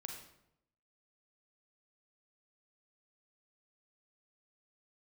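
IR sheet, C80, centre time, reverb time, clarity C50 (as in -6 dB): 7.0 dB, 34 ms, 0.80 s, 4.0 dB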